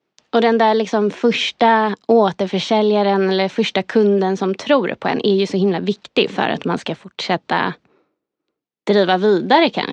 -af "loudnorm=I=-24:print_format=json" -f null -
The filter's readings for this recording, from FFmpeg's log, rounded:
"input_i" : "-17.0",
"input_tp" : "-1.4",
"input_lra" : "3.4",
"input_thresh" : "-27.4",